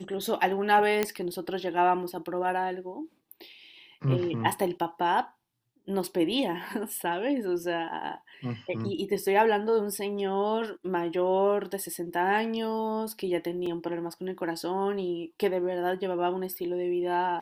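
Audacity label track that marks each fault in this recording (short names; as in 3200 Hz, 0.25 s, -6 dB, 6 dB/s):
1.030000	1.030000	pop -11 dBFS
13.660000	13.660000	gap 3.7 ms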